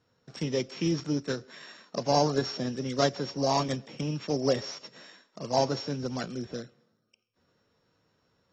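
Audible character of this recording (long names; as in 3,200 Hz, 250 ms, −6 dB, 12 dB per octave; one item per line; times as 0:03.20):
a buzz of ramps at a fixed pitch in blocks of 8 samples
AAC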